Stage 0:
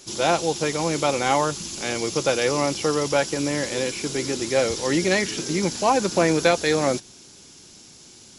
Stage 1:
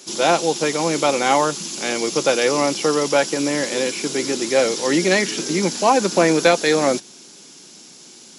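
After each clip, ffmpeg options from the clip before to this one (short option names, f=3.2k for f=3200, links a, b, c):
-af "highpass=f=170:w=0.5412,highpass=f=170:w=1.3066,volume=4dB"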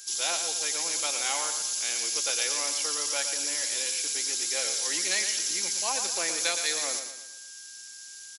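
-af "aeval=exprs='val(0)+0.00562*sin(2*PI*1600*n/s)':c=same,aderivative,aecho=1:1:115|230|345|460|575:0.398|0.171|0.0736|0.0317|0.0136"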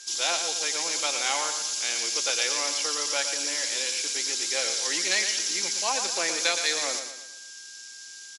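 -af "highpass=160,lowpass=6.5k,volume=4dB"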